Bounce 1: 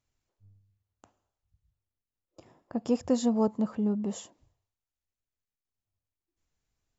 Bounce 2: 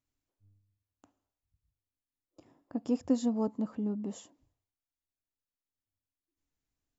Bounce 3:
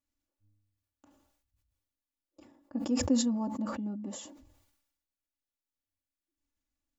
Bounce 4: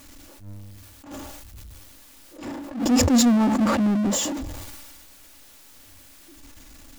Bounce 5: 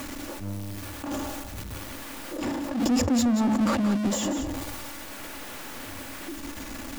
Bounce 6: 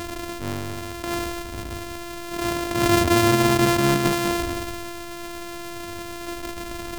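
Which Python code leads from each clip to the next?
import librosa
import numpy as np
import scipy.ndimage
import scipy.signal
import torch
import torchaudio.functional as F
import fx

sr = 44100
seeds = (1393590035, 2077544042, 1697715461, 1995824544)

y1 = fx.peak_eq(x, sr, hz=280.0, db=11.0, octaves=0.33)
y1 = F.gain(torch.from_numpy(y1), -7.0).numpy()
y2 = y1 + 0.8 * np.pad(y1, (int(3.5 * sr / 1000.0), 0))[:len(y1)]
y2 = fx.sustainer(y2, sr, db_per_s=57.0)
y2 = F.gain(torch.from_numpy(y2), -4.5).numpy()
y3 = fx.power_curve(y2, sr, exponent=0.5)
y3 = fx.attack_slew(y3, sr, db_per_s=110.0)
y3 = F.gain(torch.from_numpy(y3), 7.0).numpy()
y4 = y3 + 10.0 ** (-11.5 / 20.0) * np.pad(y3, (int(177 * sr / 1000.0), 0))[:len(y3)]
y4 = fx.band_squash(y4, sr, depth_pct=70)
y5 = np.r_[np.sort(y4[:len(y4) // 128 * 128].reshape(-1, 128), axis=1).ravel(), y4[len(y4) // 128 * 128:]]
y5 = F.gain(torch.from_numpy(y5), 4.5).numpy()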